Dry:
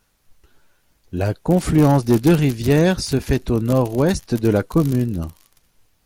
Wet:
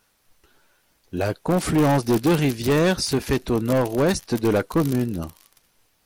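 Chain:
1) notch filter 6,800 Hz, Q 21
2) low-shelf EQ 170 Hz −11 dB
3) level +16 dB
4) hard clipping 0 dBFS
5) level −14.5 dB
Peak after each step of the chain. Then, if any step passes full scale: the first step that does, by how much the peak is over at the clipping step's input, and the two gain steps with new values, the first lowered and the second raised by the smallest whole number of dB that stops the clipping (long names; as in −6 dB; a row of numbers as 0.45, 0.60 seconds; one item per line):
−5.5, −6.5, +9.5, 0.0, −14.5 dBFS
step 3, 9.5 dB
step 3 +6 dB, step 5 −4.5 dB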